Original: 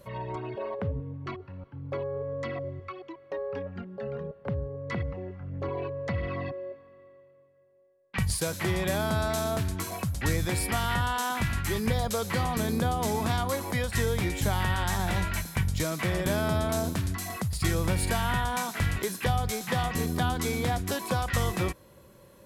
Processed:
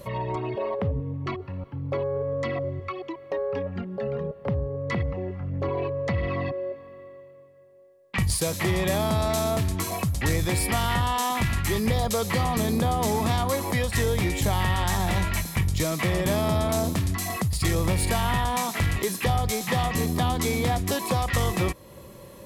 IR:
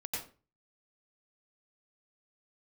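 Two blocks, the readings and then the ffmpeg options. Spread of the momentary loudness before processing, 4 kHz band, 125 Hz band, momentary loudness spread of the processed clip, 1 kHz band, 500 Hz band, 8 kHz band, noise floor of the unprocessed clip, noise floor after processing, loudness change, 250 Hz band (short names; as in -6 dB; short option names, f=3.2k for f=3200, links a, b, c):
10 LU, +4.0 dB, +4.0 dB, 8 LU, +4.0 dB, +4.5 dB, +4.0 dB, -56 dBFS, -47 dBFS, +3.5 dB, +4.0 dB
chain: -filter_complex "[0:a]bandreject=f=1.5k:w=5.9,asplit=2[a][b];[b]acompressor=threshold=-41dB:ratio=6,volume=0dB[c];[a][c]amix=inputs=2:normalize=0,asoftclip=type=tanh:threshold=-18.5dB,volume=3.5dB"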